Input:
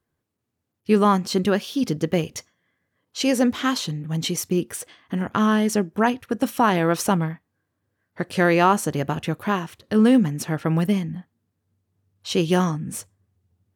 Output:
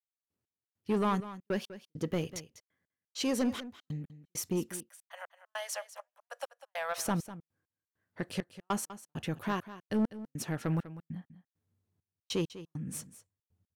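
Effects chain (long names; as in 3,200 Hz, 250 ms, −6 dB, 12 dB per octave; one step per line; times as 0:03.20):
0:04.69–0:06.98: Butterworth high-pass 540 Hz 96 dB per octave
gate pattern "..x..xxx" 100 BPM −60 dB
soft clipping −15.5 dBFS, distortion −12 dB
single-tap delay 198 ms −14.5 dB
level −8 dB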